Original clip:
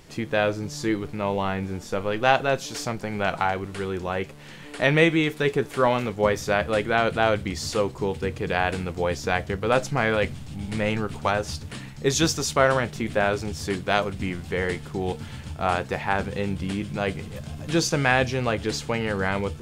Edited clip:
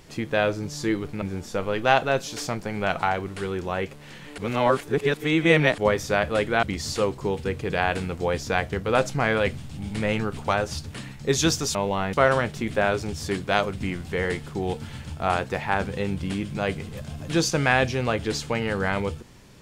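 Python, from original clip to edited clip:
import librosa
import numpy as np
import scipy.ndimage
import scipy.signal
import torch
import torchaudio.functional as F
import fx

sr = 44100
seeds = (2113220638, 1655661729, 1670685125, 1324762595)

y = fx.edit(x, sr, fx.move(start_s=1.22, length_s=0.38, to_s=12.52),
    fx.reverse_span(start_s=4.76, length_s=1.4),
    fx.cut(start_s=7.01, length_s=0.39), tone=tone)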